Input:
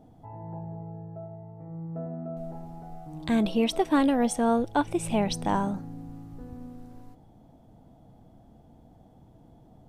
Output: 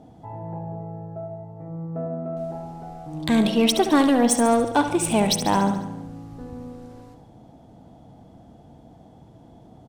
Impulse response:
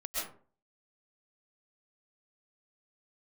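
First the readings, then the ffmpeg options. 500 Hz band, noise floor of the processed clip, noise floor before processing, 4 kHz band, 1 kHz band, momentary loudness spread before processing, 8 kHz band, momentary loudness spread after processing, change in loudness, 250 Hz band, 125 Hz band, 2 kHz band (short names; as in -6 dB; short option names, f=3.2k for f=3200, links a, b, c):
+6.0 dB, -50 dBFS, -56 dBFS, +10.0 dB, +6.0 dB, 19 LU, +12.0 dB, 20 LU, +6.5 dB, +5.0 dB, +5.0 dB, +6.5 dB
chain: -filter_complex "[0:a]highpass=f=83:p=1,asplit=2[a][b];[b]asoftclip=type=tanh:threshold=-25.5dB,volume=-3.5dB[c];[a][c]amix=inputs=2:normalize=0,adynamicsmooth=sensitivity=4.5:basefreq=6k,aecho=1:1:71|142|213|284|355|426|497:0.316|0.19|0.114|0.0683|0.041|0.0246|0.0148,crystalizer=i=2:c=0,volume=2.5dB"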